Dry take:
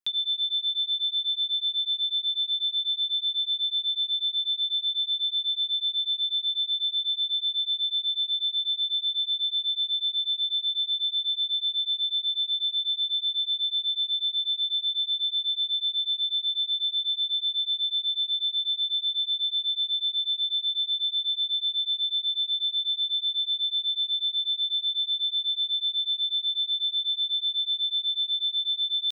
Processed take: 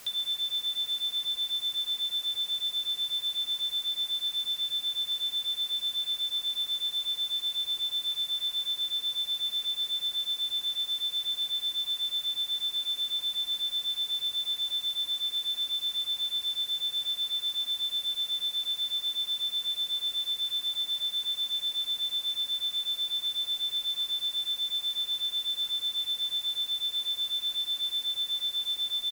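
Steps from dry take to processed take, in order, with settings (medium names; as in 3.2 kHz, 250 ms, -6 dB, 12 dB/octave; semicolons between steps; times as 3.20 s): comb 2.5 ms, depth 83%; added noise white -41 dBFS; trim -7.5 dB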